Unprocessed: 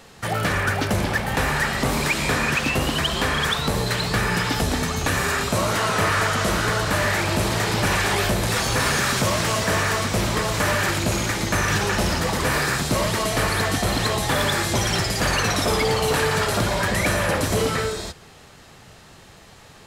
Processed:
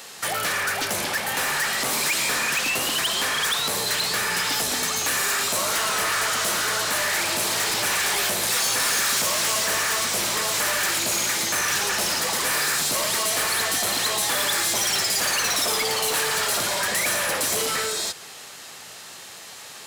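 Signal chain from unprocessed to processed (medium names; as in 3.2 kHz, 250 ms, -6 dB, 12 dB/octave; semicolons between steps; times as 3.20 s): in parallel at -0.5 dB: compression, threshold -30 dBFS, peak gain reduction 11.5 dB; on the sum: high-pass 390 Hz 6 dB/octave; tilt EQ +1.5 dB/octave; saturation -20 dBFS, distortion -11 dB; treble shelf 4.1 kHz +5.5 dB; trim -1.5 dB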